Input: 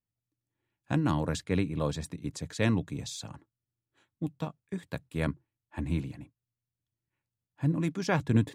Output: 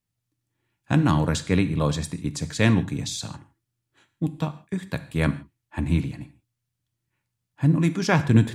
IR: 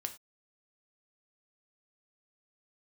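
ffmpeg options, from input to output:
-filter_complex "[0:a]asplit=2[s0][s1];[s1]equalizer=f=500:t=o:w=1.1:g=-8.5[s2];[1:a]atrim=start_sample=2205,afade=t=out:st=0.14:d=0.01,atrim=end_sample=6615,asetrate=24696,aresample=44100[s3];[s2][s3]afir=irnorm=-1:irlink=0,volume=0.841[s4];[s0][s4]amix=inputs=2:normalize=0,volume=1.33"

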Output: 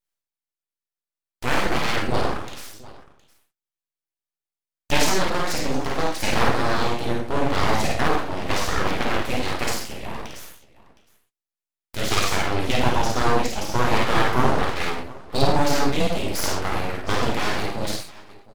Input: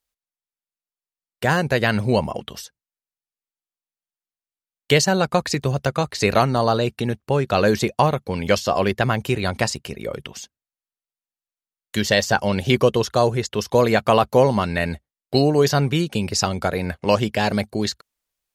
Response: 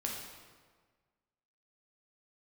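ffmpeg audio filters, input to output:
-filter_complex "[0:a]aecho=1:1:51|69|101|714:0.708|0.251|0.119|0.106[s0];[1:a]atrim=start_sample=2205,afade=t=out:st=0.26:d=0.01,atrim=end_sample=11907,asetrate=66150,aresample=44100[s1];[s0][s1]afir=irnorm=-1:irlink=0,aeval=exprs='abs(val(0))':c=same"

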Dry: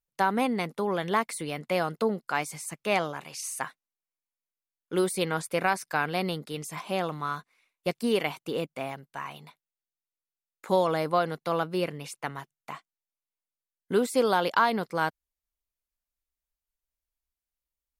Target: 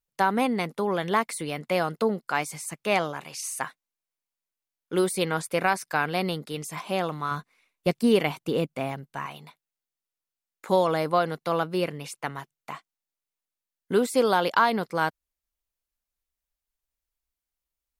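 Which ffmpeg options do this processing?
-filter_complex "[0:a]asettb=1/sr,asplit=3[s0][s1][s2];[s0]atrim=end=7.314[s3];[s1]atrim=start=7.31:end=9.26,asetpts=PTS-STARTPTS,afade=t=in:d=0.004:c=qsin,afade=t=out:st=1.946:d=0.004:c=qsin,lowshelf=f=320:g=7.5[s4];[s2]atrim=start=9.256[s5];[s3][s4]acrossfade=d=0.004:c1=hsin:c2=qsin[s6];[s6][s5]acrossfade=d=0.004:c1=qsin:c2=hsin,volume=1.26"

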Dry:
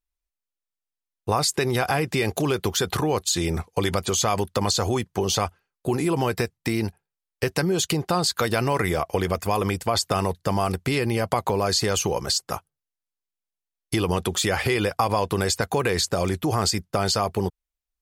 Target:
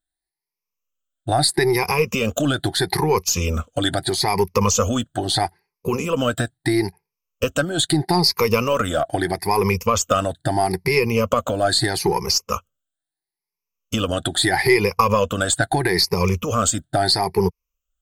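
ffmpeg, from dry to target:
-af "afftfilt=real='re*pow(10,20/40*sin(2*PI*(0.82*log(max(b,1)*sr/1024/100)/log(2)-(0.77)*(pts-256)/sr)))':imag='im*pow(10,20/40*sin(2*PI*(0.82*log(max(b,1)*sr/1024/100)/log(2)-(0.77)*(pts-256)/sr)))':win_size=1024:overlap=0.75,aeval=exprs='0.841*(cos(1*acos(clip(val(0)/0.841,-1,1)))-cos(1*PI/2))+0.0133*(cos(8*acos(clip(val(0)/0.841,-1,1)))-cos(8*PI/2))':c=same"

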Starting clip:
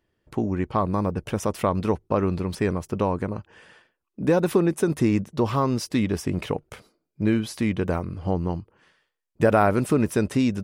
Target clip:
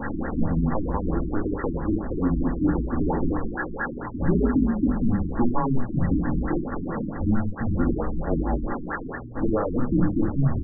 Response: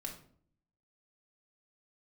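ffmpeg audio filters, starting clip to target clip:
-filter_complex "[0:a]aeval=exprs='val(0)+0.5*0.0891*sgn(val(0))':c=same,bass=f=250:g=-9,treble=f=4000:g=5,alimiter=limit=0.178:level=0:latency=1:release=433,aecho=1:1:691|1382|2073|2764|3455:0.112|0.0651|0.0377|0.0219|0.0127,afreqshift=-120,bandreject=f=610:w=12[s0];[1:a]atrim=start_sample=2205,afade=t=out:st=0.17:d=0.01,atrim=end_sample=7938[s1];[s0][s1]afir=irnorm=-1:irlink=0,afftfilt=real='re*lt(b*sr/1024,370*pow(2000/370,0.5+0.5*sin(2*PI*4.5*pts/sr)))':imag='im*lt(b*sr/1024,370*pow(2000/370,0.5+0.5*sin(2*PI*4.5*pts/sr)))':win_size=1024:overlap=0.75,volume=1.68"

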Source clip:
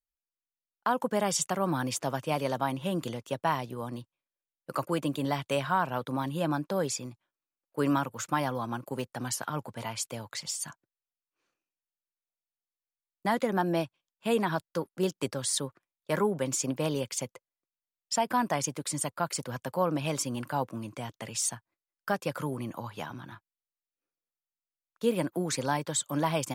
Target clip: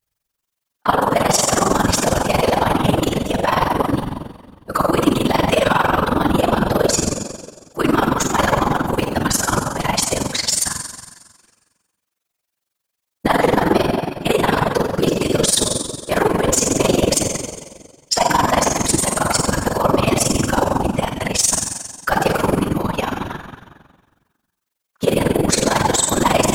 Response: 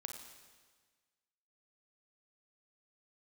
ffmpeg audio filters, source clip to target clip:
-filter_complex "[1:a]atrim=start_sample=2205[s0];[0:a][s0]afir=irnorm=-1:irlink=0,apsyclip=39.8,afftfilt=real='hypot(re,im)*cos(2*PI*random(0))':imag='hypot(re,im)*sin(2*PI*random(1))':win_size=512:overlap=0.75,tremolo=f=22:d=0.788,volume=0.794"

